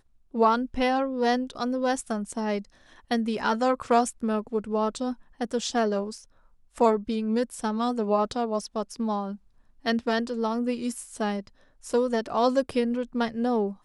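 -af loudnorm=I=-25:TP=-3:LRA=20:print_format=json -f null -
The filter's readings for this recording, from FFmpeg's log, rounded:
"input_i" : "-27.1",
"input_tp" : "-7.8",
"input_lra" : "1.7",
"input_thresh" : "-37.5",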